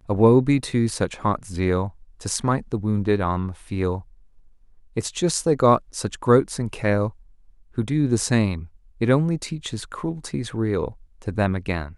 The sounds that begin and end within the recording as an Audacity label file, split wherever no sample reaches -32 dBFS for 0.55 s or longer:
4.970000	7.100000	sound